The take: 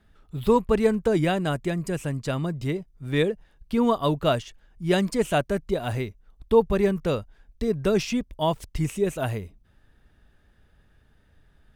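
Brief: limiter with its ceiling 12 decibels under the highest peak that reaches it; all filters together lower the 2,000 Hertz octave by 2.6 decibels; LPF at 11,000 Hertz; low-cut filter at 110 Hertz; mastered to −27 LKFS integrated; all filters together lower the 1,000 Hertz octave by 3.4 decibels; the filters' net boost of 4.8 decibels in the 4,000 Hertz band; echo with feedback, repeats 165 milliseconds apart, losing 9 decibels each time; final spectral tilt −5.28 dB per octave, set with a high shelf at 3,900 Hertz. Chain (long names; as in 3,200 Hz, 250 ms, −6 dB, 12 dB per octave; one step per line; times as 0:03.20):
high-pass filter 110 Hz
low-pass filter 11,000 Hz
parametric band 1,000 Hz −4 dB
parametric band 2,000 Hz −5.5 dB
high-shelf EQ 3,900 Hz +7.5 dB
parametric band 4,000 Hz +4 dB
brickwall limiter −21 dBFS
repeating echo 165 ms, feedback 35%, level −9 dB
level +3.5 dB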